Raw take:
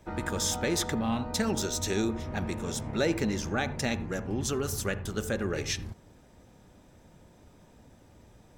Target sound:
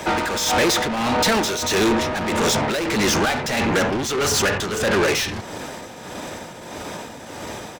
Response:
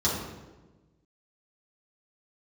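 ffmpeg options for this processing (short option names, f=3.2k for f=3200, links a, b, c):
-filter_complex "[0:a]acrossover=split=360|7100[a][b][c];[c]acompressor=threshold=-58dB:ratio=6[d];[a][b][d]amix=inputs=3:normalize=0,asplit=2[e][f];[f]highpass=f=720:p=1,volume=36dB,asoftclip=type=tanh:threshold=-13.5dB[g];[e][g]amix=inputs=2:normalize=0,lowpass=f=7.3k:p=1,volume=-6dB,atempo=1.1,tremolo=f=1.6:d=0.55,volume=3dB"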